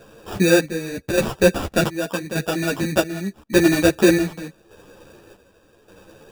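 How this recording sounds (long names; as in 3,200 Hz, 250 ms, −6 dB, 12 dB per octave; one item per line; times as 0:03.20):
chopped level 0.85 Hz, depth 60%, duty 55%
aliases and images of a low sample rate 2,100 Hz, jitter 0%
a shimmering, thickened sound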